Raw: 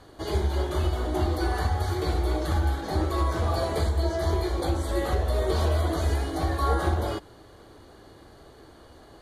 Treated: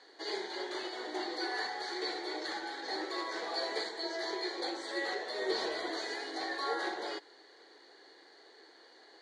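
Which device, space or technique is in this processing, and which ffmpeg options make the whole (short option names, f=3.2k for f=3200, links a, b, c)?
phone speaker on a table: -filter_complex "[0:a]asettb=1/sr,asplit=3[a][b][c];[a]atrim=end=5.394[d];[b]atrim=start=5.39:end=5.9,asetpts=PTS-STARTPTS,afade=t=in:d=0.004:c=qsin,afade=t=out:st=0.506:d=0.004:c=qsin,lowshelf=f=220:g=11.5[e];[c]atrim=start=5.896[f];[d][e]acrossfade=d=0.004:c1=hsin:c2=qsin[g];[g][f]acrossfade=d=0.004:c1=qsin:c2=hsin,highpass=f=380:w=0.5412,highpass=f=380:w=1.3066,equalizer=f=610:t=q:w=4:g=-8,equalizer=f=1.2k:t=q:w=4:g=-8,equalizer=f=1.9k:t=q:w=4:g=10,equalizer=f=2.8k:t=q:w=4:g=-3,equalizer=f=4.3k:t=q:w=4:g=9,lowpass=f=7.3k:w=0.5412,lowpass=f=7.3k:w=1.3066,volume=-5dB"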